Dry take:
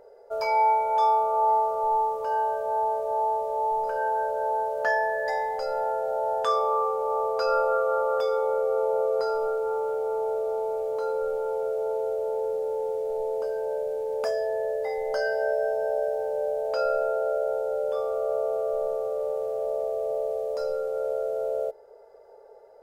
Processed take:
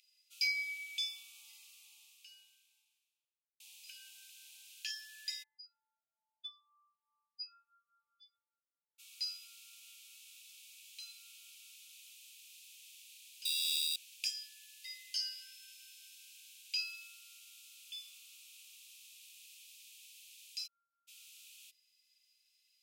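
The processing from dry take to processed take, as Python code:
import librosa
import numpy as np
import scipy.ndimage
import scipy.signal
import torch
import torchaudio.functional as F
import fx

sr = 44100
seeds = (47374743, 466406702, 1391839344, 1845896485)

y = fx.studio_fade_out(x, sr, start_s=1.32, length_s=2.28)
y = fx.spec_expand(y, sr, power=2.4, at=(5.42, 8.98), fade=0.02)
y = fx.sample_hold(y, sr, seeds[0], rate_hz=4300.0, jitter_pct=0, at=(13.45, 13.96))
y = fx.cheby_ripple(y, sr, hz=1400.0, ripple_db=3, at=(20.66, 21.07), fade=0.02)
y = scipy.signal.sosfilt(scipy.signal.cheby1(6, 1.0, 2500.0, 'highpass', fs=sr, output='sos'), y)
y = fx.high_shelf(y, sr, hz=3900.0, db=-10.0)
y = y * librosa.db_to_amplitude(14.5)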